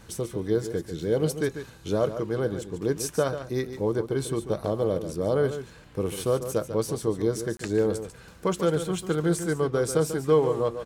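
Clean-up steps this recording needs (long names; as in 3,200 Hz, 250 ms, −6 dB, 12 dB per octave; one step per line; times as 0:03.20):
click removal
hum removal 58.6 Hz, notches 4
repair the gap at 0:07.57, 23 ms
echo removal 143 ms −10.5 dB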